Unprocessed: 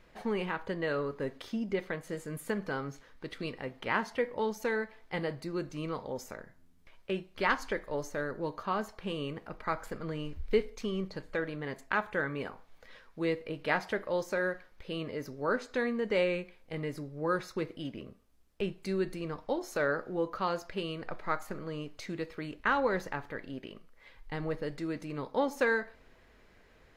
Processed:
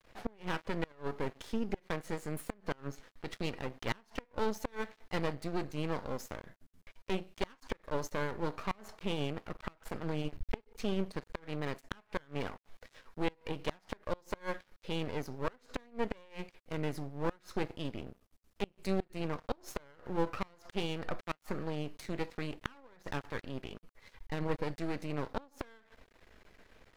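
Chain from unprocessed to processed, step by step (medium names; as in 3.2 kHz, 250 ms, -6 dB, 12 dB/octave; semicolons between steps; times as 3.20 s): half-wave rectifier; inverted gate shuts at -22 dBFS, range -29 dB; trim +3.5 dB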